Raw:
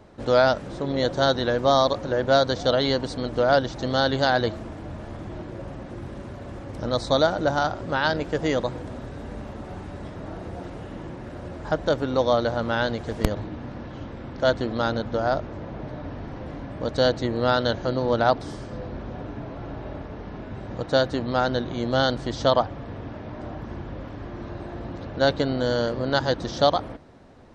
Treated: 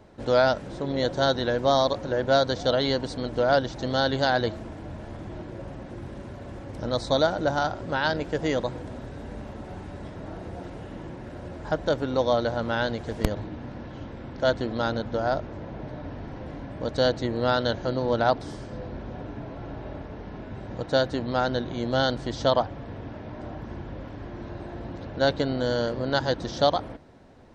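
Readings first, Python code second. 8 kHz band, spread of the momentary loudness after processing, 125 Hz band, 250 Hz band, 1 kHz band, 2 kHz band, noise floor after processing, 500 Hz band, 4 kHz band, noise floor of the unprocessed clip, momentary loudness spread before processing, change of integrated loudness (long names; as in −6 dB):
−2.0 dB, 16 LU, −2.0 dB, −2.0 dB, −2.5 dB, −2.0 dB, −40 dBFS, −2.0 dB, −2.0 dB, −38 dBFS, 16 LU, −2.0 dB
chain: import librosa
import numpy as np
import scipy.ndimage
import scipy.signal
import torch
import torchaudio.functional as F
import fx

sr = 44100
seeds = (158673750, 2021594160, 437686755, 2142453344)

y = fx.notch(x, sr, hz=1200.0, q=14.0)
y = y * 10.0 ** (-2.0 / 20.0)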